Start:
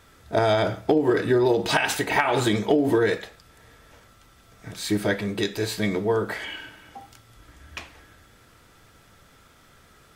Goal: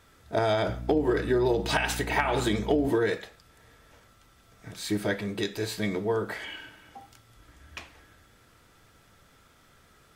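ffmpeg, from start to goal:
-filter_complex "[0:a]asettb=1/sr,asplit=3[s0][s1][s2];[s0]atrim=end=0.684[s3];[s1]atrim=start=0.68:end=2.88,asetpts=PTS-STARTPTS,afade=t=in:d=0.004:c=qsin,afade=t=out:st=2.196:d=0.004:c=qsin,aeval=exprs='val(0)+0.0282*(sin(2*PI*60*n/s)+sin(2*PI*2*60*n/s)/2+sin(2*PI*3*60*n/s)/3+sin(2*PI*4*60*n/s)/4+sin(2*PI*5*60*n/s)/5)':c=same[s4];[s2]atrim=start=2.876[s5];[s3][s4]acrossfade=d=0.004:c1=hsin:c2=qsin[s6];[s6][s5]acrossfade=d=0.004:c1=qsin:c2=hsin,volume=0.596"

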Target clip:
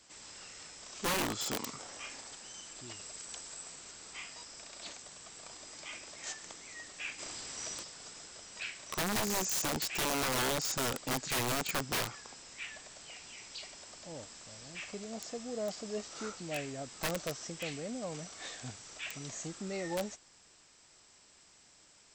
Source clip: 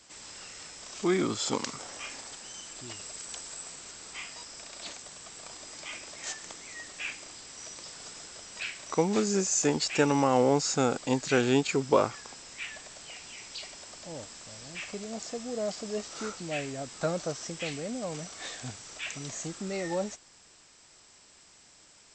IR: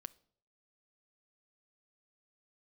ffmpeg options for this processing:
-filter_complex "[0:a]asplit=3[s0][s1][s2];[s0]afade=t=out:st=7.18:d=0.02[s3];[s1]acontrast=83,afade=t=in:st=7.18:d=0.02,afade=t=out:st=7.82:d=0.02[s4];[s2]afade=t=in:st=7.82:d=0.02[s5];[s3][s4][s5]amix=inputs=3:normalize=0,aeval=exprs='(mod(13.3*val(0)+1,2)-1)/13.3':c=same,volume=0.596"

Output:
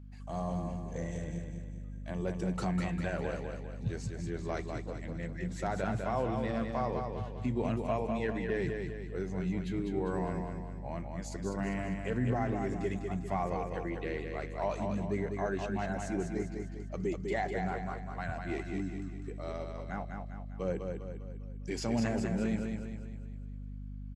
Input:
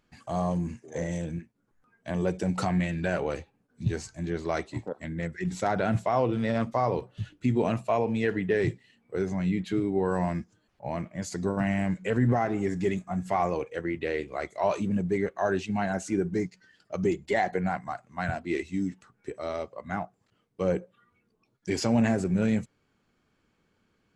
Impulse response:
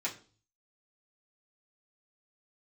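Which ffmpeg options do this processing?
-af "aeval=exprs='val(0)+0.0112*(sin(2*PI*50*n/s)+sin(2*PI*2*50*n/s)/2+sin(2*PI*3*50*n/s)/3+sin(2*PI*4*50*n/s)/4+sin(2*PI*5*50*n/s)/5)':c=same,aecho=1:1:200|400|600|800|1000|1200:0.562|0.264|0.124|0.0584|0.0274|0.0129,volume=0.398"

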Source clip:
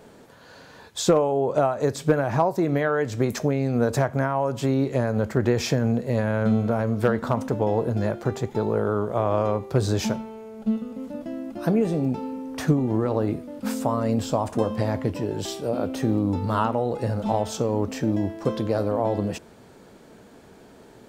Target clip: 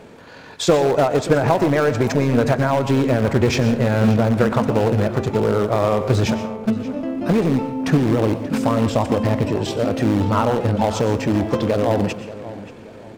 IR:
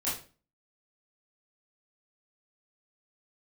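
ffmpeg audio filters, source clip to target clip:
-filter_complex "[0:a]equalizer=f=2400:t=o:w=0.47:g=5.5,asplit=2[s0][s1];[s1]aeval=exprs='(mod(7.94*val(0)+1,2)-1)/7.94':c=same,volume=0.299[s2];[s0][s2]amix=inputs=2:normalize=0,acontrast=21,atempo=1.6,highshelf=f=7500:g=-10.5,asplit=2[s3][s4];[s4]adelay=581,lowpass=f=3900:p=1,volume=0.178,asplit=2[s5][s6];[s6]adelay=581,lowpass=f=3900:p=1,volume=0.38,asplit=2[s7][s8];[s8]adelay=581,lowpass=f=3900:p=1,volume=0.38[s9];[s3][s5][s7][s9]amix=inputs=4:normalize=0,asplit=2[s10][s11];[1:a]atrim=start_sample=2205,adelay=91[s12];[s11][s12]afir=irnorm=-1:irlink=0,volume=0.133[s13];[s10][s13]amix=inputs=2:normalize=0"

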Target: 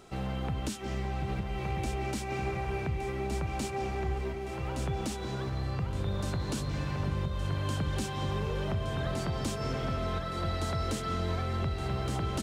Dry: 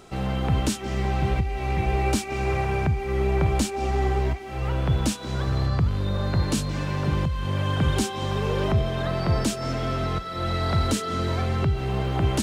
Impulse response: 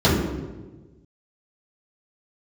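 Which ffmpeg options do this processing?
-af "acompressor=threshold=0.0631:ratio=6,aecho=1:1:1168|2336|3504|4672:0.562|0.174|0.054|0.0168,volume=0.531"

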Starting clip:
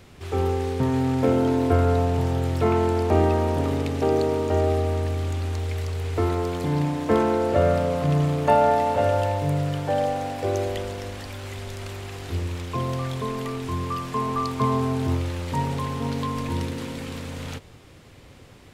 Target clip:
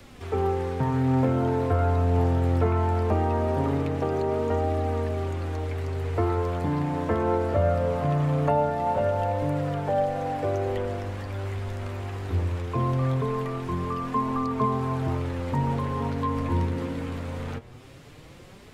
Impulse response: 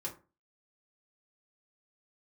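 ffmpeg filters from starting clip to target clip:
-filter_complex "[0:a]acrossover=split=190|580|2000[s0][s1][s2][s3];[s0]acompressor=threshold=0.0501:ratio=4[s4];[s1]acompressor=threshold=0.0251:ratio=4[s5];[s2]acompressor=threshold=0.0355:ratio=4[s6];[s3]acompressor=threshold=0.00158:ratio=4[s7];[s4][s5][s6][s7]amix=inputs=4:normalize=0,flanger=delay=3.4:depth=8.6:regen=38:speed=0.21:shape=triangular,volume=1.88"

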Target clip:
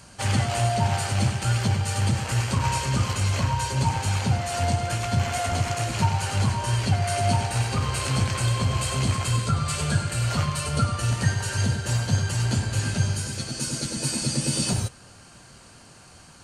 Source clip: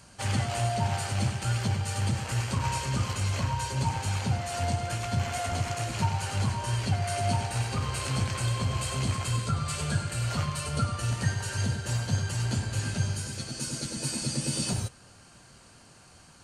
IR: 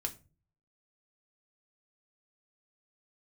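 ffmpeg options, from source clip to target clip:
-af "volume=1.78"

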